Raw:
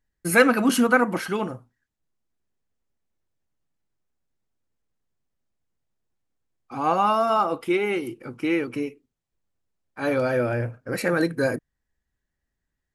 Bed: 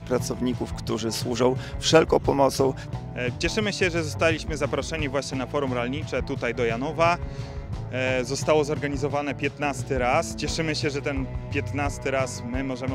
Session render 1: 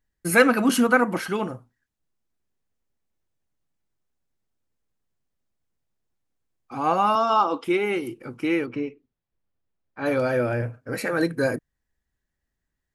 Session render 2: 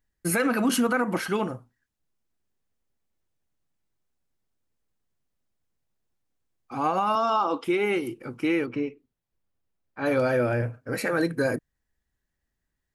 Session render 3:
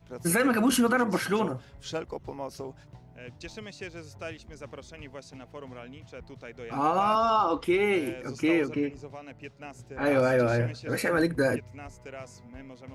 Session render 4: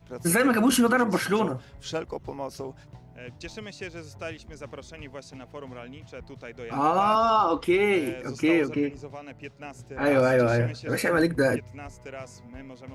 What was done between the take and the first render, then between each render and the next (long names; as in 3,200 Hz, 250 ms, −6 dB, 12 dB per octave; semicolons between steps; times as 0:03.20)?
0:07.15–0:07.64: loudspeaker in its box 240–7,200 Hz, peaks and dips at 280 Hz +7 dB, 630 Hz −4 dB, 970 Hz +8 dB, 2,000 Hz −10 dB, 3,300 Hz +9 dB, 5,700 Hz +5 dB; 0:08.66–0:10.06: high-frequency loss of the air 180 metres; 0:10.62–0:11.22: notch comb filter 180 Hz
brickwall limiter −15.5 dBFS, peak gain reduction 11 dB
mix in bed −17 dB
level +2.5 dB